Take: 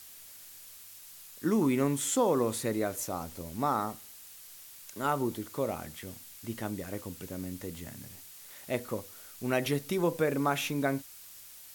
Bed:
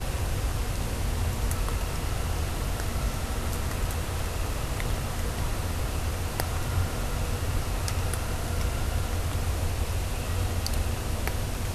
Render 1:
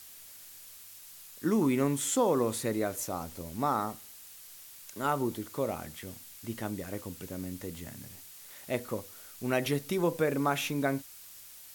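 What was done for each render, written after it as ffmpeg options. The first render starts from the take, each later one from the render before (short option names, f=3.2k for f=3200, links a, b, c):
-af anull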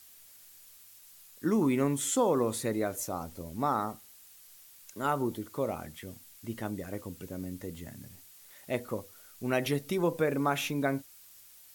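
-af "afftdn=nr=6:nf=-50"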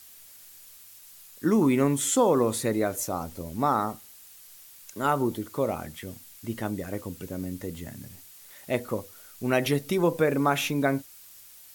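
-af "volume=5dB"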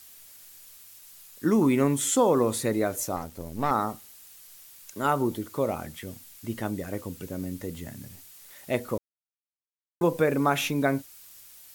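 -filter_complex "[0:a]asettb=1/sr,asplit=3[a][b][c];[a]atrim=end=3.164[d];[b]atrim=start=3.16:end=3.71,asetpts=PTS-STARTPTS,afade=t=in:d=0.004:c=qsin,afade=t=out:st=0.546:d=0.004:c=qsin,aeval=exprs='if(lt(val(0),0),0.447*val(0),val(0))':c=same[e];[c]atrim=start=3.706[f];[d][e]acrossfade=d=0.004:c1=hsin:c2=qsin[g];[g][f]acrossfade=d=0.004:c1=qsin:c2=hsin,asplit=3[h][i][j];[h]atrim=end=8.98,asetpts=PTS-STARTPTS,afade=t=out:st=8.976:d=0.004:c=hsin[k];[i]atrim=start=8.98:end=10.01,asetpts=PTS-STARTPTS,volume=0[l];[j]atrim=start=10.01,asetpts=PTS-STARTPTS,afade=t=in:d=0.004:c=hsin[m];[k][l][m]concat=n=3:v=0:a=1"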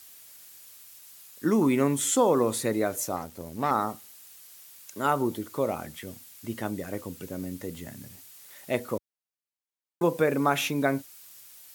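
-af "highpass=75,lowshelf=f=180:g=-3.5"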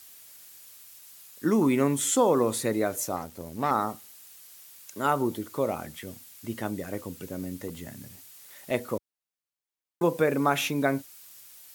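-filter_complex "[0:a]asettb=1/sr,asplit=3[a][b][c];[a]atrim=end=7.684[d];[b]atrim=start=7.68:end=8.71,asetpts=PTS-STARTPTS,afade=t=in:d=0.004:c=qsin,afade=t=out:st=1.026:d=0.004:c=qsin,asoftclip=type=hard:threshold=-30dB[e];[c]atrim=start=8.706[f];[d][e]acrossfade=d=0.004:c1=hsin:c2=qsin[g];[g][f]acrossfade=d=0.004:c1=qsin:c2=hsin"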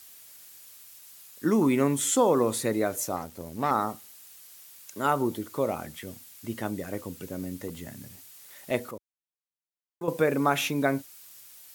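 -filter_complex "[0:a]asplit=3[a][b][c];[a]atrim=end=8.912[d];[b]atrim=start=8.908:end=10.082,asetpts=PTS-STARTPTS,volume=-10dB[e];[c]atrim=start=10.078[f];[d][e]acrossfade=d=0.004:c1=hsin:c2=hsin[g];[g][f]acrossfade=d=0.004:c1=hsin:c2=hsin"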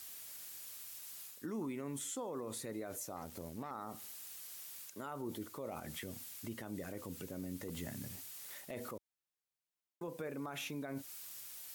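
-af "areverse,acompressor=threshold=-31dB:ratio=6,areverse,alimiter=level_in=9.5dB:limit=-24dB:level=0:latency=1:release=128,volume=-9.5dB"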